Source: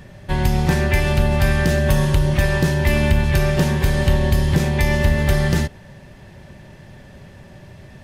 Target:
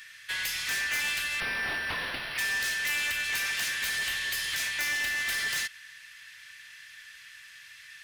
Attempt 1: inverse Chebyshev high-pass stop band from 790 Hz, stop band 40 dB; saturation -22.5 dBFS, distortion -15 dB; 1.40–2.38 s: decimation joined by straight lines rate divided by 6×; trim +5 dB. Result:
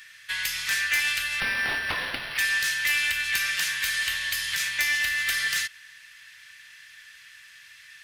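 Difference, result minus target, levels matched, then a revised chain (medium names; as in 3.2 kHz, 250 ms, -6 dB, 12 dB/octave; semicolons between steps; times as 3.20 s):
saturation: distortion -8 dB
inverse Chebyshev high-pass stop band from 790 Hz, stop band 40 dB; saturation -32 dBFS, distortion -8 dB; 1.40–2.38 s: decimation joined by straight lines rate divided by 6×; trim +5 dB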